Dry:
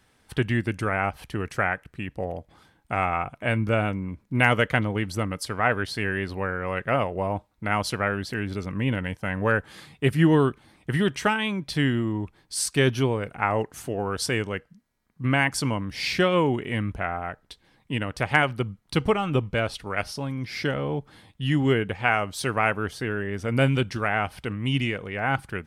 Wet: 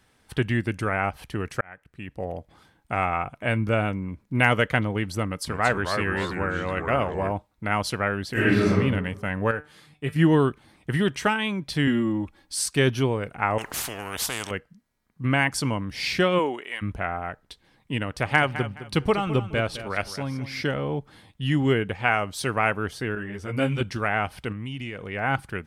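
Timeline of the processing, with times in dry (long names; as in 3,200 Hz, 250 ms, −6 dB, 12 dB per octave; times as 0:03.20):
0:01.61–0:02.34: fade in
0:05.27–0:07.32: delay with pitch and tempo change per echo 201 ms, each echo −3 semitones, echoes 2, each echo −6 dB
0:08.32–0:08.73: thrown reverb, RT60 0.99 s, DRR −11 dB
0:09.51–0:10.16: tuned comb filter 150 Hz, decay 0.23 s, mix 70%
0:11.87–0:12.56: comb filter 3.6 ms, depth 76%
0:13.58–0:14.51: every bin compressed towards the loudest bin 4 to 1
0:16.38–0:16.81: high-pass filter 280 Hz → 1,100 Hz
0:18.04–0:20.61: repeating echo 211 ms, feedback 27%, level −13 dB
0:23.15–0:23.81: string-ensemble chorus
0:24.52–0:25.10: downward compressor, threshold −30 dBFS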